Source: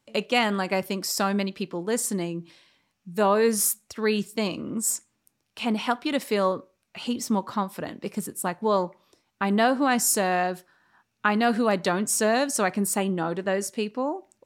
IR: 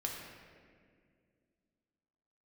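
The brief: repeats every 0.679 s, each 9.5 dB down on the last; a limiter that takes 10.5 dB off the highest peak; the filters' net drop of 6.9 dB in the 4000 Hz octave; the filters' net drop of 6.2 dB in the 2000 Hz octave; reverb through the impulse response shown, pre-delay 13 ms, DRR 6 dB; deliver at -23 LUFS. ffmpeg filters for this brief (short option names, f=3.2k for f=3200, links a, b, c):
-filter_complex "[0:a]equalizer=f=2k:t=o:g=-6.5,equalizer=f=4k:t=o:g=-7.5,alimiter=limit=-21.5dB:level=0:latency=1,aecho=1:1:679|1358|2037|2716:0.335|0.111|0.0365|0.012,asplit=2[a][b];[1:a]atrim=start_sample=2205,adelay=13[c];[b][c]afir=irnorm=-1:irlink=0,volume=-7.5dB[d];[a][d]amix=inputs=2:normalize=0,volume=7dB"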